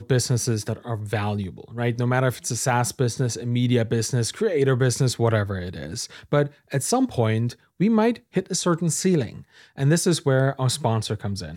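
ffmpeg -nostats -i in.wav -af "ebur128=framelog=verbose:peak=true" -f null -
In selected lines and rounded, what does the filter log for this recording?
Integrated loudness:
  I:         -23.3 LUFS
  Threshold: -33.4 LUFS
Loudness range:
  LRA:         1.7 LU
  Threshold: -43.3 LUFS
  LRA low:   -24.2 LUFS
  LRA high:  -22.5 LUFS
True peak:
  Peak:       -7.3 dBFS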